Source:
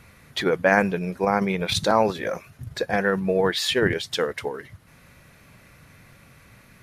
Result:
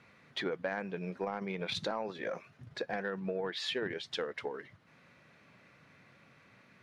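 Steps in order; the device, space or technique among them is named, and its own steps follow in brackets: AM radio (BPF 170–4300 Hz; compressor 6:1, threshold -24 dBFS, peak gain reduction 11 dB; soft clip -14 dBFS, distortion -25 dB); gain -7.5 dB

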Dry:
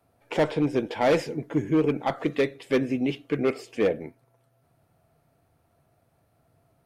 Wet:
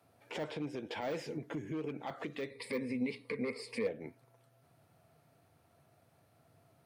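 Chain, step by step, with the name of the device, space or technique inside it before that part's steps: broadcast voice chain (HPF 81 Hz 24 dB/oct; de-esser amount 95%; compressor 4:1, threshold -35 dBFS, peak gain reduction 14.5 dB; bell 4000 Hz +4 dB 2.7 oct; limiter -28.5 dBFS, peak gain reduction 10 dB); 2.5–3.87 ripple EQ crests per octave 0.93, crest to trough 16 dB; gain -1.5 dB

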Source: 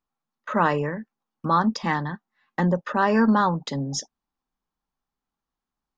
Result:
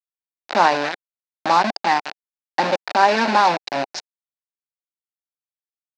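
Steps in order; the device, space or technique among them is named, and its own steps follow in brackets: 1.87–3.49 dynamic EQ 160 Hz, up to -4 dB, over -30 dBFS, Q 1.8; hand-held game console (bit-crush 4-bit; speaker cabinet 450–4500 Hz, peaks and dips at 460 Hz -8 dB, 780 Hz +5 dB, 1200 Hz -9 dB, 2000 Hz -4 dB, 3200 Hz -9 dB); gain +8 dB

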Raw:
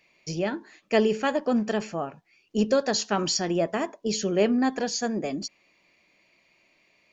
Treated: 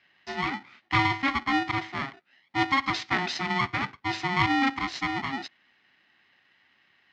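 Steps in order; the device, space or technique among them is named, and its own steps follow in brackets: ring modulator pedal into a guitar cabinet (polarity switched at an audio rate 540 Hz; speaker cabinet 110–4500 Hz, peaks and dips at 280 Hz +3 dB, 480 Hz -7 dB, 2000 Hz +9 dB); gain -2.5 dB

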